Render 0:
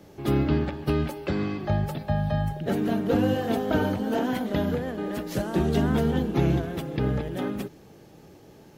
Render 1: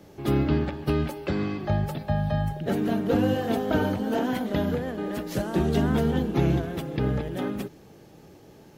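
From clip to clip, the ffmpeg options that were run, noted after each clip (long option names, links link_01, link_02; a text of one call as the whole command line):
ffmpeg -i in.wav -af anull out.wav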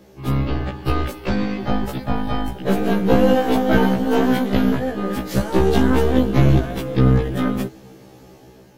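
ffmpeg -i in.wav -af "dynaudnorm=framelen=310:gausssize=5:maxgain=5.5dB,aeval=exprs='0.473*(cos(1*acos(clip(val(0)/0.473,-1,1)))-cos(1*PI/2))+0.15*(cos(2*acos(clip(val(0)/0.473,-1,1)))-cos(2*PI/2))+0.0188*(cos(6*acos(clip(val(0)/0.473,-1,1)))-cos(6*PI/2))':channel_layout=same,afftfilt=real='re*1.73*eq(mod(b,3),0)':imag='im*1.73*eq(mod(b,3),0)':win_size=2048:overlap=0.75,volume=4dB" out.wav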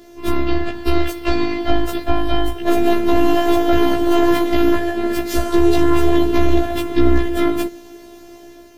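ffmpeg -i in.wav -af "afftfilt=real='hypot(re,im)*cos(PI*b)':imag='0':win_size=512:overlap=0.75,alimiter=level_in=10dB:limit=-1dB:release=50:level=0:latency=1,volume=-1dB" out.wav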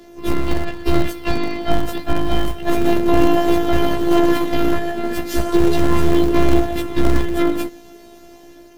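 ffmpeg -i in.wav -filter_complex "[0:a]aphaser=in_gain=1:out_gain=1:delay=4.5:decay=0.28:speed=0.31:type=sinusoidal,acrossover=split=180[link_01][link_02];[link_01]acrusher=bits=3:mode=log:mix=0:aa=0.000001[link_03];[link_03][link_02]amix=inputs=2:normalize=0,tremolo=f=160:d=0.261,volume=-1dB" out.wav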